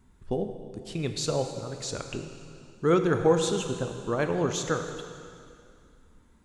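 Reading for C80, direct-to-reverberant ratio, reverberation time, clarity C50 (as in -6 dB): 7.5 dB, 5.5 dB, 2.4 s, 7.0 dB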